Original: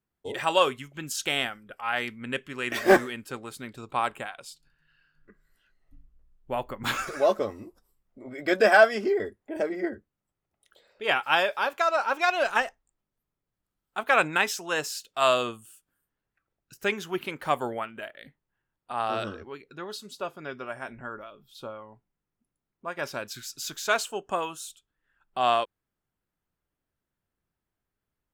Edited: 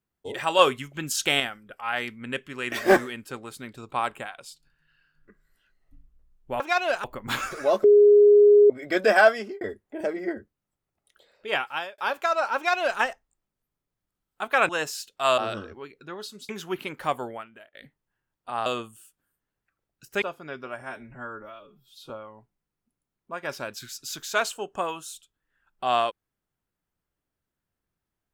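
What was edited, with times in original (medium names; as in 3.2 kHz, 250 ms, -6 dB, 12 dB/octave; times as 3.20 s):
0.59–1.40 s: gain +4.5 dB
7.40–8.26 s: bleep 413 Hz -11 dBFS
8.88–9.17 s: fade out
11.03–11.54 s: fade out
12.12–12.56 s: copy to 6.60 s
14.25–14.66 s: delete
15.35–16.91 s: swap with 19.08–20.19 s
17.44–18.16 s: fade out, to -19 dB
20.78–21.64 s: stretch 1.5×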